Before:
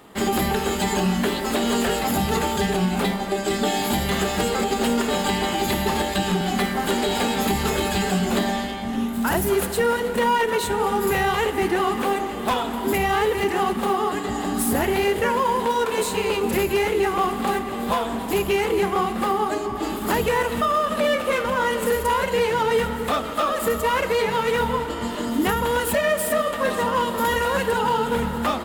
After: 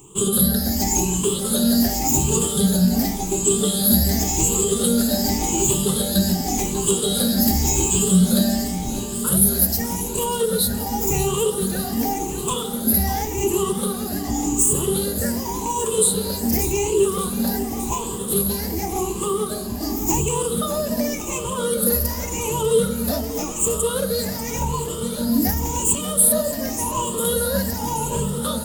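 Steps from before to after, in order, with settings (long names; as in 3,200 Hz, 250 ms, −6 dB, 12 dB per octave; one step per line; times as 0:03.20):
rippled gain that drifts along the octave scale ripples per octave 0.69, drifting +0.89 Hz, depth 22 dB
drawn EQ curve 150 Hz 0 dB, 2,000 Hz −20 dB, 6,600 Hz +5 dB
feedback echo at a low word length 593 ms, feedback 80%, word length 7 bits, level −14 dB
level +2 dB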